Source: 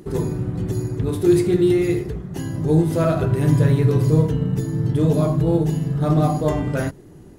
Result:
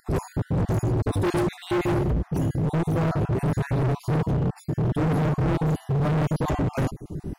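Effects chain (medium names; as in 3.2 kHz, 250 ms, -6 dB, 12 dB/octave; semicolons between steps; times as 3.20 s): random holes in the spectrogram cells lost 38%; bass shelf 370 Hz +11.5 dB; level rider; overload inside the chain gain 21 dB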